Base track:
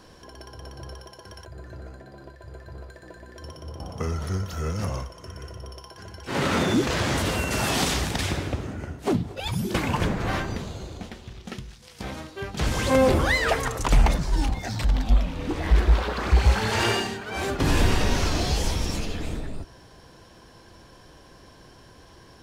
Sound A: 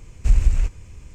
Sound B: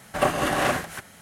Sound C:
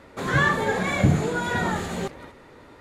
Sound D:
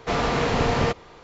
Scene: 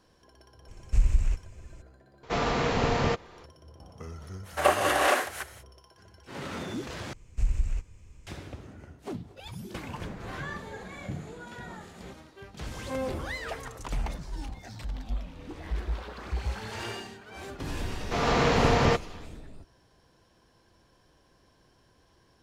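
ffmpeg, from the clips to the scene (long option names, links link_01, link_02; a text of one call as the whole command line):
ffmpeg -i bed.wav -i cue0.wav -i cue1.wav -i cue2.wav -i cue3.wav -filter_complex "[1:a]asplit=2[link_01][link_02];[4:a]asplit=2[link_03][link_04];[0:a]volume=-13.5dB[link_05];[2:a]highpass=frequency=340:width=0.5412,highpass=frequency=340:width=1.3066[link_06];[link_04]dynaudnorm=framelen=140:gausssize=3:maxgain=6dB[link_07];[link_05]asplit=2[link_08][link_09];[link_08]atrim=end=7.134[link_10];[link_02]atrim=end=1.14,asetpts=PTS-STARTPTS,volume=-10.5dB[link_11];[link_09]atrim=start=8.266[link_12];[link_01]atrim=end=1.14,asetpts=PTS-STARTPTS,volume=-6.5dB,afade=type=in:duration=0.004:curve=hsin,afade=type=out:start_time=1.136:duration=0.004:curve=hsin,adelay=680[link_13];[link_03]atrim=end=1.23,asetpts=PTS-STARTPTS,volume=-4dB,afade=type=in:duration=0.004:curve=hsin,afade=type=out:start_time=1.226:duration=0.004:curve=hsin,adelay=2230[link_14];[link_06]atrim=end=1.21,asetpts=PTS-STARTPTS,afade=type=in:duration=0.05,afade=type=out:start_time=1.16:duration=0.05,adelay=4430[link_15];[3:a]atrim=end=2.8,asetpts=PTS-STARTPTS,volume=-18dB,afade=type=in:duration=0.004:curve=hsin,afade=type=out:start_time=2.796:duration=0.004:curve=hsin,adelay=10050[link_16];[link_07]atrim=end=1.23,asetpts=PTS-STARTPTS,volume=-6dB,afade=type=in:duration=0.004:curve=hsin,afade=type=out:start_time=1.226:duration=0.004:curve=hsin,adelay=18040[link_17];[link_10][link_11]acrossfade=duration=0.004:curve1=hsin:curve2=hsin[link_18];[link_18][link_12]acrossfade=duration=0.004:curve1=hsin:curve2=hsin[link_19];[link_19][link_13][link_14][link_15][link_16][link_17]amix=inputs=6:normalize=0" out.wav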